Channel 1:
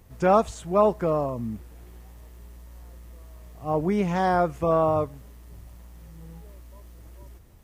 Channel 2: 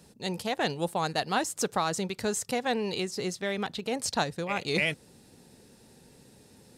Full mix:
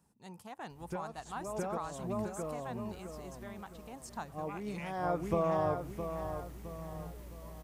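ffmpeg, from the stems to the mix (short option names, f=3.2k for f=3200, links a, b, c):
-filter_complex "[0:a]acompressor=threshold=-27dB:ratio=6,adelay=700,volume=-1dB,asplit=2[a][b];[b]volume=-8.5dB[c];[1:a]equalizer=f=500:t=o:w=1:g=-9,equalizer=f=1k:t=o:w=1:g=8,equalizer=f=2k:t=o:w=1:g=-4,equalizer=f=4k:t=o:w=1:g=-11,volume=-14.5dB,asplit=3[d][e][f];[e]volume=-17dB[g];[f]apad=whole_len=367643[h];[a][h]sidechaincompress=threshold=-52dB:ratio=8:attack=12:release=312[i];[c][g]amix=inputs=2:normalize=0,aecho=0:1:663|1326|1989|2652|3315|3978:1|0.4|0.16|0.064|0.0256|0.0102[j];[i][d][j]amix=inputs=3:normalize=0"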